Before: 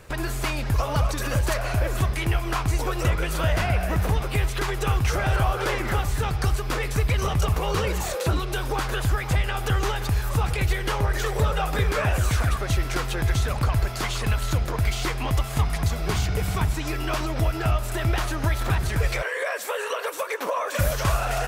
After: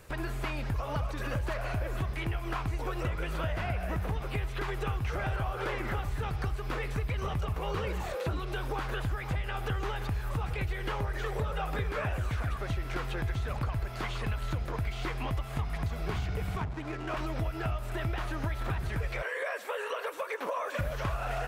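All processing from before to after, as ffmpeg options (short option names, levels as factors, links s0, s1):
-filter_complex "[0:a]asettb=1/sr,asplit=3[s0][s1][s2];[s0]atrim=end=16.574[s3];[s1]atrim=start=16.57:end=17.17,asetpts=PTS-STARTPTS,afade=t=in:d=0.004:c=qsin,afade=t=out:st=0.596:d=0.004:c=qsin,highpass=f=110:p=1,highshelf=f=5300:g=-6.5,adynamicsmooth=sensitivity=5.5:basefreq=540[s4];[s2]atrim=start=17.166[s5];[s3][s4]acrossfade=d=0.004:c1=hsin:c2=qsin[s6];[s6][s5]acrossfade=d=0.004:c1=qsin:c2=hsin,acrossover=split=3500[s7][s8];[s8]acompressor=threshold=0.00282:ratio=4:attack=1:release=60[s9];[s7][s9]amix=inputs=2:normalize=0,highshelf=f=9500:g=5.5,acompressor=threshold=0.0794:ratio=6,volume=0.501"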